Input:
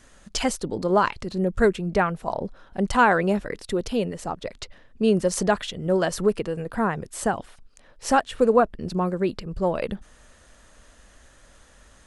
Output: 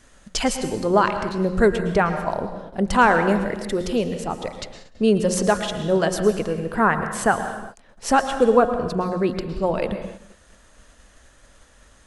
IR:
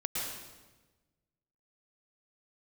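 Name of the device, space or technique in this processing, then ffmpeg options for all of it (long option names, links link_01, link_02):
keyed gated reverb: -filter_complex "[0:a]asettb=1/sr,asplit=3[link_01][link_02][link_03];[link_01]atrim=end=6.604[link_04];[link_02]atrim=start=6.6:end=7.38,asetpts=PTS-STARTPTS,afade=type=in:duration=0.004:curve=qsin,afade=type=out:start_time=0.776:duration=0.004:curve=qsin,adynamicequalizer=threshold=0.0112:dfrequency=1500:dqfactor=0.77:tfrequency=1500:tqfactor=0.77:attack=5:release=100:ratio=0.375:range=4:mode=boostabove:tftype=bell[link_05];[link_03]atrim=start=7.376[link_06];[link_04][link_05]acrossfade=duration=0.004:curve1=hsin:curve2=qsin[link_07];[link_07][link_06]acrossfade=duration=0.004:curve1=qsin:curve2=hsin,bandreject=frequency=180.3:width_type=h:width=4,bandreject=frequency=360.6:width_type=h:width=4,bandreject=frequency=540.9:width_type=h:width=4,bandreject=frequency=721.2:width_type=h:width=4,bandreject=frequency=901.5:width_type=h:width=4,bandreject=frequency=1081.8:width_type=h:width=4,bandreject=frequency=1262.1:width_type=h:width=4,bandreject=frequency=1442.4:width_type=h:width=4,bandreject=frequency=1622.7:width_type=h:width=4,bandreject=frequency=1803:width_type=h:width=4,bandreject=frequency=1983.3:width_type=h:width=4,asplit=3[link_08][link_09][link_10];[1:a]atrim=start_sample=2205[link_11];[link_09][link_11]afir=irnorm=-1:irlink=0[link_12];[link_10]apad=whole_len=531945[link_13];[link_12][link_13]sidechaingate=range=-33dB:threshold=-49dB:ratio=16:detection=peak,volume=-9.5dB[link_14];[link_08][link_14]amix=inputs=2:normalize=0"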